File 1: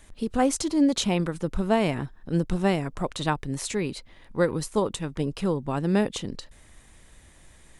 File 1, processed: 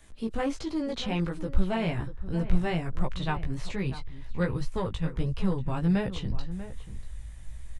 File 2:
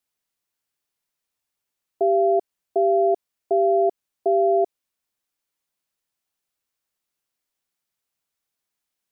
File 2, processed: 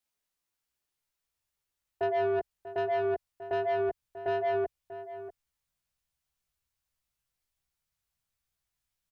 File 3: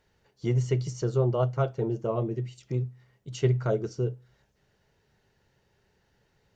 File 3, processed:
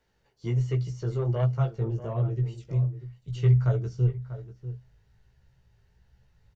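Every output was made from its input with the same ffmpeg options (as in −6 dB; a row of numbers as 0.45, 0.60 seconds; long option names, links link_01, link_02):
-filter_complex "[0:a]acrossover=split=4300[link_01][link_02];[link_02]acompressor=threshold=-54dB:ratio=4:attack=1:release=60[link_03];[link_01][link_03]amix=inputs=2:normalize=0,flanger=delay=15.5:depth=2.5:speed=1.3,asubboost=boost=9.5:cutoff=98,acrossover=split=220|1200[link_04][link_05][link_06];[link_05]asoftclip=type=tanh:threshold=-26.5dB[link_07];[link_04][link_07][link_06]amix=inputs=3:normalize=0,asplit=2[link_08][link_09];[link_09]adelay=641.4,volume=-13dB,highshelf=frequency=4000:gain=-14.4[link_10];[link_08][link_10]amix=inputs=2:normalize=0"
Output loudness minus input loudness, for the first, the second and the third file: −4.5, −10.0, +1.5 LU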